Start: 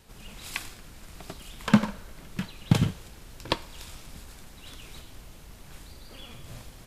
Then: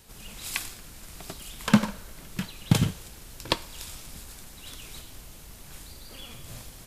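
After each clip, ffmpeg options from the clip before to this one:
-af "highshelf=f=5000:g=9"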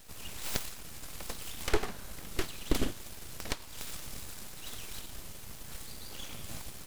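-af "alimiter=limit=0.178:level=0:latency=1:release=388,aeval=exprs='abs(val(0))':c=same,volume=1.26"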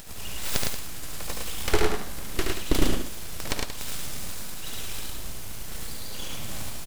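-filter_complex "[0:a]acompressor=mode=upward:threshold=0.00708:ratio=2.5,asplit=2[s0][s1];[s1]aecho=0:1:72.89|107.9|180.8:0.631|0.708|0.316[s2];[s0][s2]amix=inputs=2:normalize=0,volume=1.78"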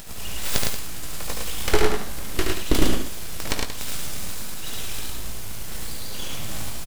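-filter_complex "[0:a]asplit=2[s0][s1];[s1]adelay=19,volume=0.282[s2];[s0][s2]amix=inputs=2:normalize=0,volume=1.41"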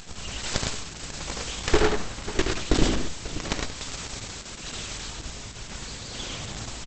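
-af "aecho=1:1:542:0.178" -ar 48000 -c:a libopus -b:a 10k

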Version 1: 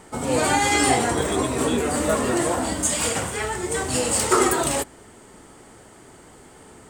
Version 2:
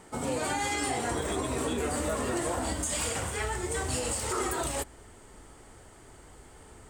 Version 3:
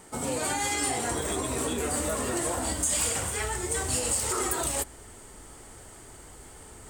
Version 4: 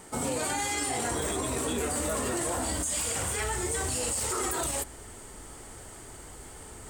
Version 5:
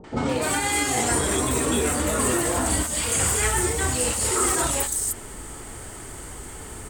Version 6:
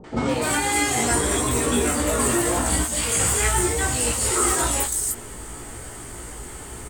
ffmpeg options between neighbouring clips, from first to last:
-af "asubboost=boost=4.5:cutoff=82,alimiter=limit=0.168:level=0:latency=1:release=114,volume=0.531"
-af "highshelf=f=6100:g=9.5,areverse,acompressor=mode=upward:threshold=0.00891:ratio=2.5,areverse"
-af "alimiter=limit=0.0668:level=0:latency=1:release=20,volume=1.26"
-filter_complex "[0:a]acrossover=split=650|5000[s0][s1][s2];[s1]adelay=40[s3];[s2]adelay=290[s4];[s0][s3][s4]amix=inputs=3:normalize=0,volume=2.66"
-filter_complex "[0:a]asplit=2[s0][s1];[s1]adelay=17,volume=0.596[s2];[s0][s2]amix=inputs=2:normalize=0"

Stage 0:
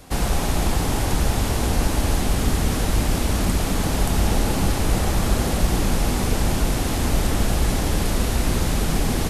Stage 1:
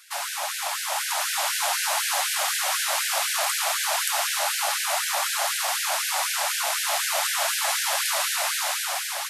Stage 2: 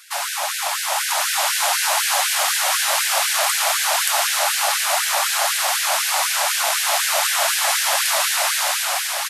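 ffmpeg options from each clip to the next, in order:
-af "dynaudnorm=f=430:g=5:m=2.66,afftfilt=real='re*gte(b*sr/1024,530*pow(1500/530,0.5+0.5*sin(2*PI*4*pts/sr)))':imag='im*gte(b*sr/1024,530*pow(1500/530,0.5+0.5*sin(2*PI*4*pts/sr)))':win_size=1024:overlap=0.75"
-af "aecho=1:1:722|1444|2166|2888:0.224|0.0918|0.0376|0.0154,volume=1.88"

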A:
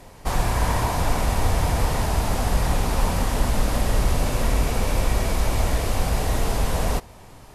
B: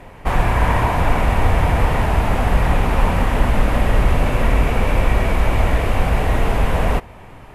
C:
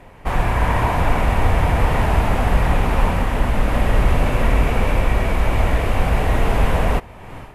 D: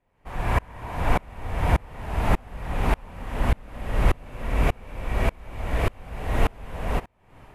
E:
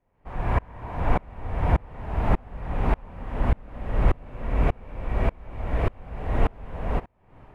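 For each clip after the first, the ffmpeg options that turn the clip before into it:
-af "highshelf=f=3500:t=q:w=1.5:g=-11,volume=1.88"
-af "dynaudnorm=f=180:g=3:m=3.76,volume=0.631"
-af "aeval=exprs='val(0)*pow(10,-32*if(lt(mod(-1.7*n/s,1),2*abs(-1.7)/1000),1-mod(-1.7*n/s,1)/(2*abs(-1.7)/1000),(mod(-1.7*n/s,1)-2*abs(-1.7)/1000)/(1-2*abs(-1.7)/1000))/20)':c=same"
-af "lowpass=f=1300:p=1"

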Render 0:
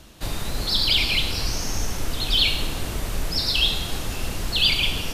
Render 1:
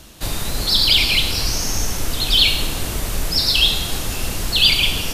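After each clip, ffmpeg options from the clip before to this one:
-af "highshelf=f=5100:g=6.5,volume=1.5"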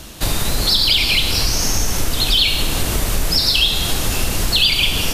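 -af "acompressor=threshold=0.0891:ratio=3,volume=2.24"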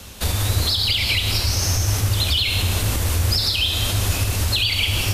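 -af "alimiter=limit=0.422:level=0:latency=1:release=118,afreqshift=-110,volume=0.75"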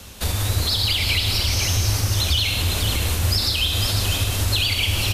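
-af "aecho=1:1:500:0.501,volume=0.841"

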